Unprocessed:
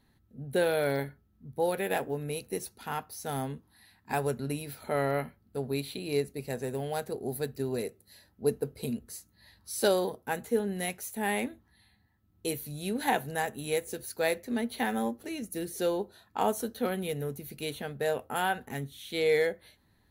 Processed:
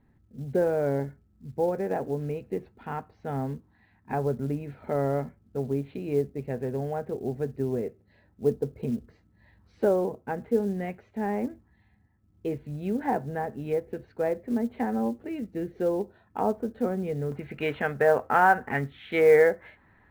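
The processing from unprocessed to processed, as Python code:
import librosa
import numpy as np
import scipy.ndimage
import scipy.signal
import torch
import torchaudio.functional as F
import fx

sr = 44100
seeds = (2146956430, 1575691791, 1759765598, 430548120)

y = scipy.signal.sosfilt(scipy.signal.butter(4, 2300.0, 'lowpass', fs=sr, output='sos'), x)
y = fx.env_lowpass_down(y, sr, base_hz=1300.0, full_db=-27.5)
y = fx.peak_eq(y, sr, hz=1600.0, db=fx.steps((0.0, -6.5), (17.32, 9.0)), octaves=2.7)
y = fx.quant_float(y, sr, bits=4)
y = y * 10.0 ** (5.0 / 20.0)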